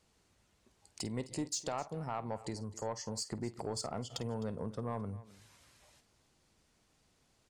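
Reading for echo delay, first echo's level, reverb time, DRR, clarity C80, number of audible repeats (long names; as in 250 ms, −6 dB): 50 ms, −15.5 dB, no reverb audible, no reverb audible, no reverb audible, 2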